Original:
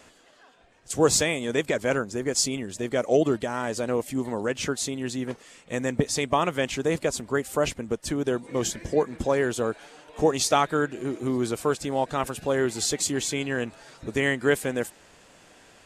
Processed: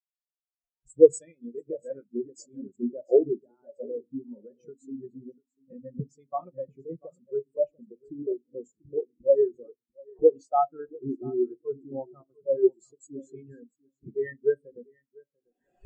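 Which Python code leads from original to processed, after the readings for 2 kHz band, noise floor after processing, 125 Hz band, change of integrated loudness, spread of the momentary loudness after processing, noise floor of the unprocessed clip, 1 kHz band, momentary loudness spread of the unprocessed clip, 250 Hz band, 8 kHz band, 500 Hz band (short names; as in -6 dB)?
under -20 dB, under -85 dBFS, -13.5 dB, -1.5 dB, 21 LU, -56 dBFS, -5.5 dB, 9 LU, -7.0 dB, under -20 dB, 0.0 dB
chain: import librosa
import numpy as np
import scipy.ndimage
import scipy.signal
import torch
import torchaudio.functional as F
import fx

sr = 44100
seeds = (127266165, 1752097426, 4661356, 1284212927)

y = fx.recorder_agc(x, sr, target_db=-16.5, rise_db_per_s=31.0, max_gain_db=30)
y = fx.high_shelf(y, sr, hz=6700.0, db=9.5)
y = fx.echo_feedback(y, sr, ms=692, feedback_pct=30, wet_db=-7.0)
y = fx.room_shoebox(y, sr, seeds[0], volume_m3=880.0, walls='furnished', distance_m=0.96)
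y = fx.spectral_expand(y, sr, expansion=4.0)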